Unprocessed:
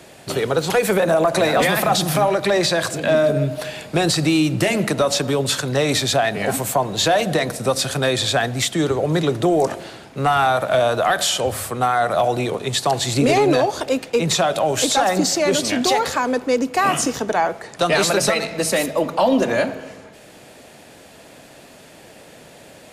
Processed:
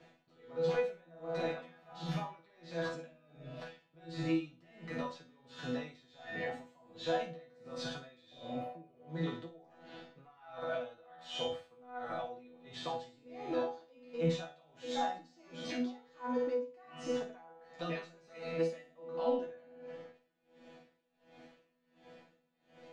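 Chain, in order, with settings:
healed spectral selection 0:08.34–0:09.01, 490–10,000 Hz after
brickwall limiter −14.5 dBFS, peak gain reduction 8 dB
high-frequency loss of the air 190 metres
resonators tuned to a chord E3 fifth, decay 0.42 s
flutter between parallel walls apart 9 metres, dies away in 0.49 s
tremolo with a sine in dB 1.4 Hz, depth 26 dB
level +3.5 dB

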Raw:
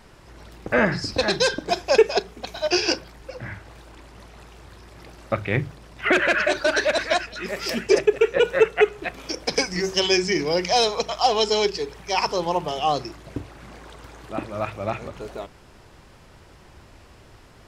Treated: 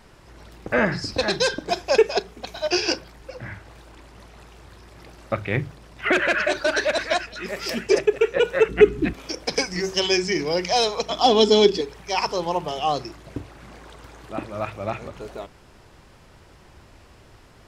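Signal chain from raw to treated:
0:08.69–0:09.13: low shelf with overshoot 410 Hz +14 dB, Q 3
0:11.10–0:11.81: hollow resonant body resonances 260/3,400 Hz, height 18 dB, ringing for 30 ms
level −1 dB

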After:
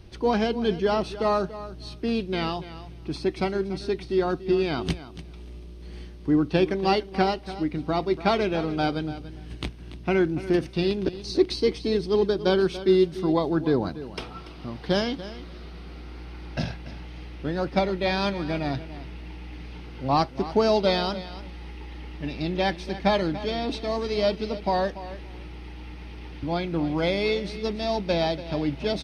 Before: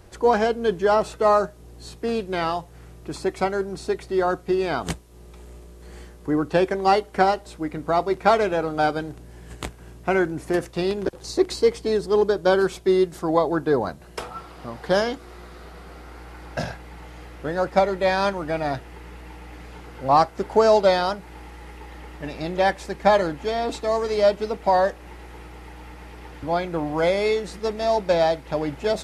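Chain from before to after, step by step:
Savitzky-Golay smoothing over 15 samples
flat-topped bell 910 Hz −9 dB 2.4 octaves
repeating echo 287 ms, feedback 15%, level −14.5 dB
level +2.5 dB

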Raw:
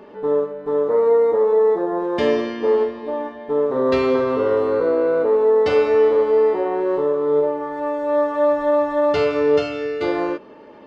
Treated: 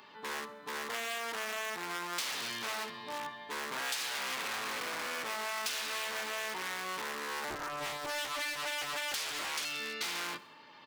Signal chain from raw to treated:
sub-octave generator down 1 octave, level −1 dB
octave-band graphic EQ 125/250/500/1,000/2,000/4,000 Hz +9/+8/−4/+10/+5/+11 dB
wave folding −13.5 dBFS
first difference
repeating echo 66 ms, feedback 55%, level −22.5 dB
downward compressor, threshold −33 dBFS, peak gain reduction 8.5 dB
0:07.50–0:09.65: highs frequency-modulated by the lows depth 0.76 ms

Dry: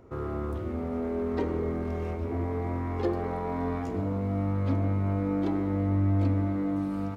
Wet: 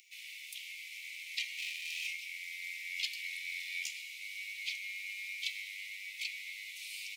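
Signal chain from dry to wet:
0:01.57–0:02.07: lower of the sound and its delayed copy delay 1.6 ms
Butterworth high-pass 2,200 Hz 96 dB per octave
level +17 dB

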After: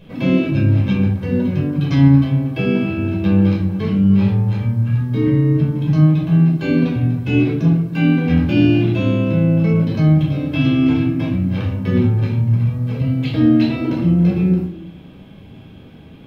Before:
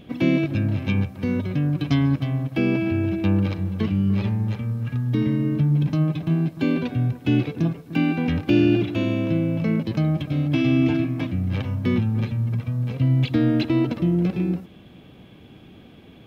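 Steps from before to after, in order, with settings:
rectangular room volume 650 cubic metres, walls furnished, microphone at 5.2 metres
level −3.5 dB

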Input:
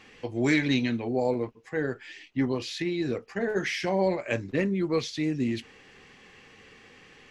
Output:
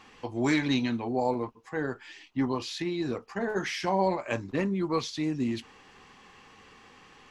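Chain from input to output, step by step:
graphic EQ with 10 bands 125 Hz −3 dB, 500 Hz −5 dB, 1,000 Hz +9 dB, 2,000 Hz −6 dB

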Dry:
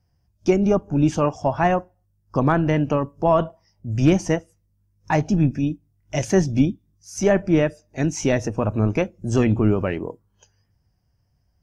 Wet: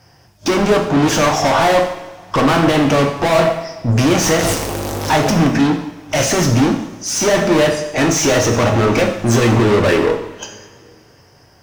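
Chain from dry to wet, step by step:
0:04.22–0:05.48: converter with a step at zero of −25 dBFS
mid-hump overdrive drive 39 dB, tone 4,200 Hz, clips at −5 dBFS
coupled-rooms reverb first 0.78 s, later 3.1 s, from −20 dB, DRR 2.5 dB
level −3.5 dB

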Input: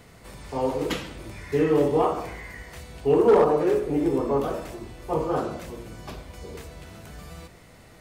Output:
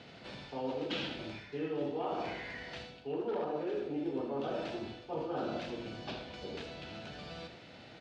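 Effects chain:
high-shelf EQ 2,200 Hz +8 dB
reversed playback
downward compressor 6 to 1, threshold −32 dBFS, peak gain reduction 17.5 dB
reversed playback
loudspeaker in its box 150–4,000 Hz, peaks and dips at 170 Hz −3 dB, 430 Hz −4 dB, 1,100 Hz −10 dB, 2,000 Hz −8 dB
single-tap delay 77 ms −9 dB

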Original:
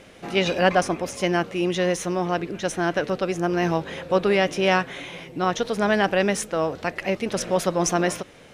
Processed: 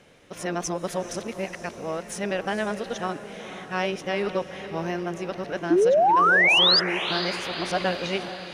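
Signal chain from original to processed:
played backwards from end to start
sound drawn into the spectrogram rise, 0:05.70–0:06.80, 310–5,100 Hz −11 dBFS
feedback delay with all-pass diffusion 477 ms, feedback 56%, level −11.5 dB
level −7 dB

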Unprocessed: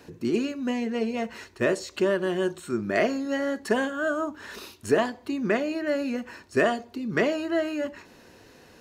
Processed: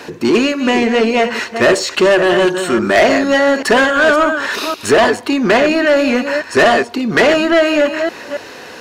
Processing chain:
delay that plays each chunk backwards 279 ms, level −10.5 dB
mid-hump overdrive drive 22 dB, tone 4,200 Hz, clips at −9 dBFS
level +7 dB

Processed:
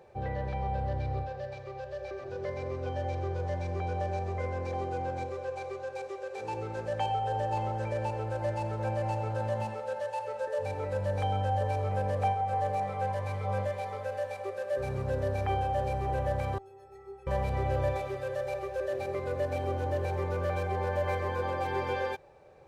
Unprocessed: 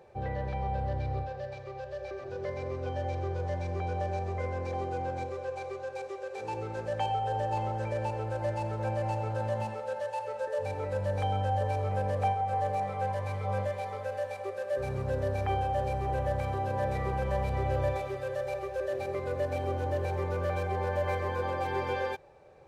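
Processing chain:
0:16.58–0:17.27: stiff-string resonator 390 Hz, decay 0.37 s, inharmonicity 0.03

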